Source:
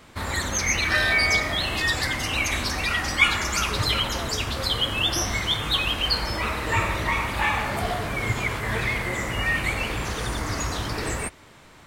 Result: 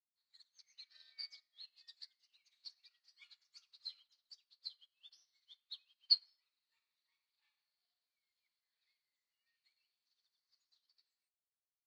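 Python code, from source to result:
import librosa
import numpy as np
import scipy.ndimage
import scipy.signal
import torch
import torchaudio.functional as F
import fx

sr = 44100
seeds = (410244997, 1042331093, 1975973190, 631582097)

y = fx.bandpass_q(x, sr, hz=4400.0, q=8.4)
y = fx.upward_expand(y, sr, threshold_db=-48.0, expansion=2.5)
y = y * 10.0 ** (-3.0 / 20.0)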